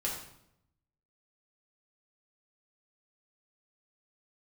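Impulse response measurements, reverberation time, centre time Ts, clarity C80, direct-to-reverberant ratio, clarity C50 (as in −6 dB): 0.75 s, 39 ms, 7.0 dB, −5.0 dB, 4.0 dB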